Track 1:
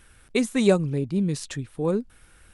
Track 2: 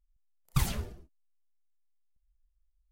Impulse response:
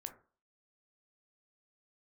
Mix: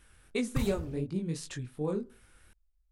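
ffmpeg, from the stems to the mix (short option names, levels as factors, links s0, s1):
-filter_complex "[0:a]flanger=delay=19.5:depth=5.4:speed=2.7,volume=0.531,asplit=2[s0][s1];[s1]volume=0.473[s2];[1:a]tiltshelf=f=970:g=3.5,volume=0.708[s3];[2:a]atrim=start_sample=2205[s4];[s2][s4]afir=irnorm=-1:irlink=0[s5];[s0][s3][s5]amix=inputs=3:normalize=0,acompressor=threshold=0.0355:ratio=2"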